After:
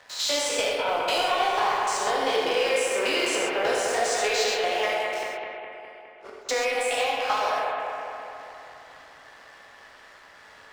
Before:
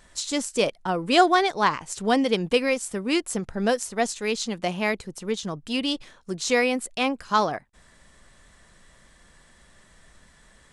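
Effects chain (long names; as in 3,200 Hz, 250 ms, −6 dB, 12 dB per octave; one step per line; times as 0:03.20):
spectrum averaged block by block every 100 ms
high-pass filter 520 Hz 24 dB per octave
low-pass that shuts in the quiet parts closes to 2,500 Hz, open at −23.5 dBFS
downward compressor 10 to 1, threshold −37 dBFS, peak gain reduction 19 dB
leveller curve on the samples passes 3
0:05.23–0:06.49: gate with flip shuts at −32 dBFS, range −40 dB
bucket-brigade delay 206 ms, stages 4,096, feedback 64%, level −3.5 dB
reverb whose tail is shaped and stops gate 160 ms flat, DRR −1 dB
level +2 dB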